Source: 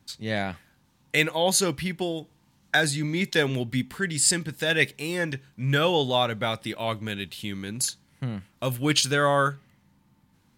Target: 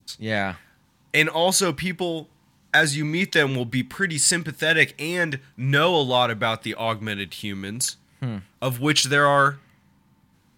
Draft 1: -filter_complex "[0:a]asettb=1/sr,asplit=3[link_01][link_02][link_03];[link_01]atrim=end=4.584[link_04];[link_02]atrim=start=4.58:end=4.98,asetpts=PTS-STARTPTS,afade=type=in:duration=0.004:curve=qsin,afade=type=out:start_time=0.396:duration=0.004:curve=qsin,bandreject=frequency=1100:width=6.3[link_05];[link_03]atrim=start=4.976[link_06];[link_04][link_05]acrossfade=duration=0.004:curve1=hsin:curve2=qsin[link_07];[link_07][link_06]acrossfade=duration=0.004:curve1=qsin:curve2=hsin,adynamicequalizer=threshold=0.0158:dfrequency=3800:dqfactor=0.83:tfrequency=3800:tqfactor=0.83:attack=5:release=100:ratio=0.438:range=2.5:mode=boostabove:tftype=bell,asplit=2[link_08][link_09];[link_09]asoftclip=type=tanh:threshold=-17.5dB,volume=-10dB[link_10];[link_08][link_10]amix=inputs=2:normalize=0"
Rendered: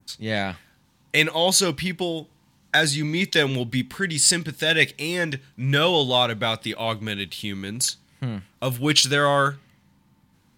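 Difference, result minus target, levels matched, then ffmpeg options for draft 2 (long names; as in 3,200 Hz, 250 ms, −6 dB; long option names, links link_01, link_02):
4,000 Hz band +3.0 dB
-filter_complex "[0:a]asettb=1/sr,asplit=3[link_01][link_02][link_03];[link_01]atrim=end=4.584[link_04];[link_02]atrim=start=4.58:end=4.98,asetpts=PTS-STARTPTS,afade=type=in:duration=0.004:curve=qsin,afade=type=out:start_time=0.396:duration=0.004:curve=qsin,bandreject=frequency=1100:width=6.3[link_05];[link_03]atrim=start=4.976[link_06];[link_04][link_05]acrossfade=duration=0.004:curve1=hsin:curve2=qsin[link_07];[link_07][link_06]acrossfade=duration=0.004:curve1=qsin:curve2=hsin,adynamicequalizer=threshold=0.0158:dfrequency=1500:dqfactor=0.83:tfrequency=1500:tqfactor=0.83:attack=5:release=100:ratio=0.438:range=2.5:mode=boostabove:tftype=bell,asplit=2[link_08][link_09];[link_09]asoftclip=type=tanh:threshold=-17.5dB,volume=-10dB[link_10];[link_08][link_10]amix=inputs=2:normalize=0"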